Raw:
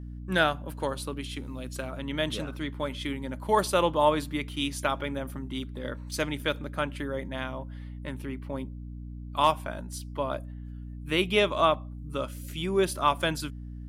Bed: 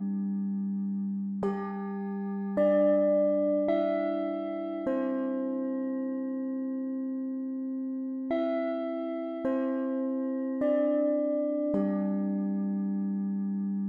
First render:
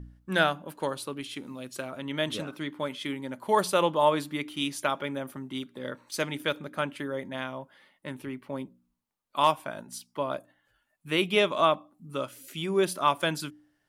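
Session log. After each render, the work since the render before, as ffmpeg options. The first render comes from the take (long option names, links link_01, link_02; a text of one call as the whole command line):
ffmpeg -i in.wav -af "bandreject=frequency=60:width_type=h:width=4,bandreject=frequency=120:width_type=h:width=4,bandreject=frequency=180:width_type=h:width=4,bandreject=frequency=240:width_type=h:width=4,bandreject=frequency=300:width_type=h:width=4" out.wav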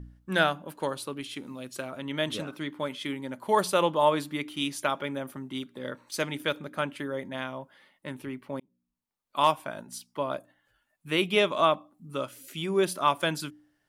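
ffmpeg -i in.wav -filter_complex "[0:a]asplit=2[link_01][link_02];[link_01]atrim=end=8.6,asetpts=PTS-STARTPTS,afade=type=out:start_time=8.596:duration=0.004:curve=hsin[link_03];[link_02]atrim=start=8.6,asetpts=PTS-STARTPTS,afade=type=in:duration=0.79[link_04];[link_03][link_04]concat=n=2:v=0:a=1" out.wav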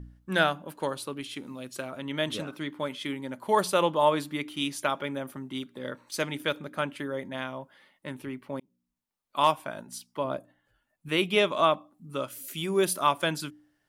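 ffmpeg -i in.wav -filter_complex "[0:a]asettb=1/sr,asplit=3[link_01][link_02][link_03];[link_01]atrim=end=10.244[link_04];[link_02]atrim=start=10.24:end=11.09,asetpts=PTS-STARTPTS,afade=type=in:duration=0.004:curve=qsin,afade=type=out:start_time=0.846:duration=0.004:curve=qsin,tiltshelf=frequency=690:gain=4[link_05];[link_03]atrim=start=11.086[link_06];[link_04][link_05]acrossfade=duration=0.004:curve1=hsin:curve2=qsin[link_07];[link_07][link_06]acrossfade=duration=0.004:curve1=qsin:curve2=hsin,asettb=1/sr,asplit=3[link_08][link_09][link_10];[link_08]atrim=end=12.304[link_11];[link_09]atrim=start=12.3:end=13.07,asetpts=PTS-STARTPTS,afade=type=in:duration=0.004:curve=qsin,afade=type=out:start_time=0.766:duration=0.004:curve=qsin,highshelf=frequency=9100:gain=12[link_12];[link_10]atrim=start=13.066[link_13];[link_11][link_12]acrossfade=duration=0.004:curve1=hsin:curve2=qsin[link_14];[link_14][link_13]acrossfade=duration=0.004:curve1=qsin:curve2=hsin" out.wav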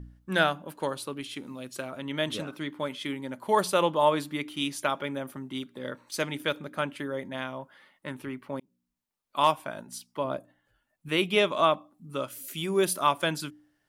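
ffmpeg -i in.wav -filter_complex "[0:a]asettb=1/sr,asplit=3[link_01][link_02][link_03];[link_01]atrim=end=7.594[link_04];[link_02]atrim=start=7.59:end=8.55,asetpts=PTS-STARTPTS,afade=type=in:duration=0.004:curve=qsin,afade=type=out:start_time=0.956:duration=0.004:curve=qsin,equalizer=frequency=1300:width=1.5:gain=4.5[link_05];[link_03]atrim=start=8.546[link_06];[link_04][link_05]acrossfade=duration=0.004:curve1=hsin:curve2=qsin[link_07];[link_07][link_06]acrossfade=duration=0.004:curve1=qsin:curve2=hsin" out.wav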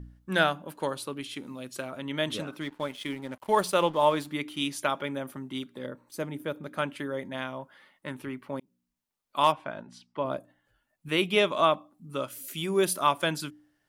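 ffmpeg -i in.wav -filter_complex "[0:a]asettb=1/sr,asplit=3[link_01][link_02][link_03];[link_01]atrim=end=2.614[link_04];[link_02]atrim=start=2.61:end=4.27,asetpts=PTS-STARTPTS,afade=type=in:duration=0.004:curve=qsin,afade=type=out:start_time=1.656:duration=0.004:curve=qsin,aeval=exprs='sgn(val(0))*max(abs(val(0))-0.00376,0)':channel_layout=same[link_05];[link_03]atrim=start=4.266[link_06];[link_04][link_05]acrossfade=duration=0.004:curve1=hsin:curve2=qsin[link_07];[link_07][link_06]acrossfade=duration=0.004:curve1=qsin:curve2=hsin,asplit=3[link_08][link_09][link_10];[link_08]afade=type=out:start_time=5.85:duration=0.02[link_11];[link_09]equalizer=frequency=3700:width=0.35:gain=-13.5,afade=type=in:start_time=5.85:duration=0.02,afade=type=out:start_time=6.63:duration=0.02[link_12];[link_10]afade=type=in:start_time=6.63:duration=0.02[link_13];[link_11][link_12][link_13]amix=inputs=3:normalize=0,asettb=1/sr,asplit=3[link_14][link_15][link_16];[link_14]atrim=end=9.524[link_17];[link_15]atrim=start=9.52:end=10.26,asetpts=PTS-STARTPTS,afade=type=in:duration=0.004:curve=qsin,afade=type=out:start_time=0.736:duration=0.004:curve=qsin,lowpass=3300[link_18];[link_16]atrim=start=10.256[link_19];[link_17][link_18]acrossfade=duration=0.004:curve1=hsin:curve2=qsin[link_20];[link_20][link_19]acrossfade=duration=0.004:curve1=qsin:curve2=hsin" out.wav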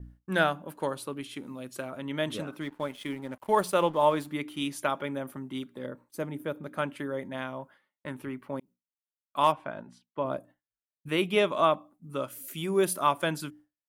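ffmpeg -i in.wav -af "equalizer=frequency=4400:width_type=o:width=1.9:gain=-5.5,agate=range=-33dB:threshold=-47dB:ratio=3:detection=peak" out.wav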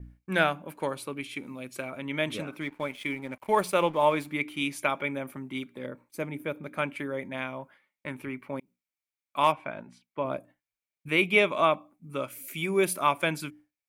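ffmpeg -i in.wav -af "equalizer=frequency=2300:width=5.8:gain=14" out.wav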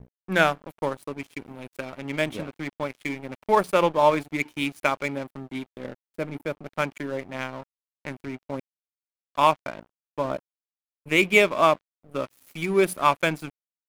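ffmpeg -i in.wav -filter_complex "[0:a]asplit=2[link_01][link_02];[link_02]adynamicsmooth=sensitivity=4:basefreq=600,volume=-2dB[link_03];[link_01][link_03]amix=inputs=2:normalize=0,aeval=exprs='sgn(val(0))*max(abs(val(0))-0.0112,0)':channel_layout=same" out.wav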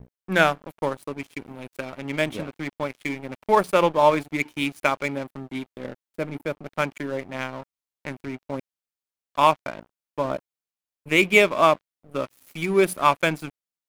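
ffmpeg -i in.wav -af "volume=1.5dB" out.wav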